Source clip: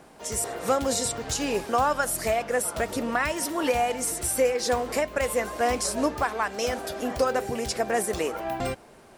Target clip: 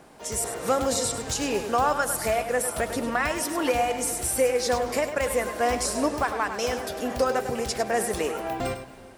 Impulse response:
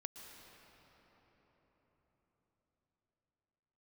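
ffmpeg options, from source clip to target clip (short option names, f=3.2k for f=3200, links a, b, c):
-filter_complex "[0:a]asplit=2[a][b];[1:a]atrim=start_sample=2205,afade=t=out:st=0.38:d=0.01,atrim=end_sample=17199,adelay=101[c];[b][c]afir=irnorm=-1:irlink=0,volume=-4.5dB[d];[a][d]amix=inputs=2:normalize=0"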